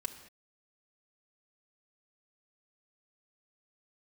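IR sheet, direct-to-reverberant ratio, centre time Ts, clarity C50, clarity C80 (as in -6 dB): 4.0 dB, 12 ms, 11.0 dB, 12.5 dB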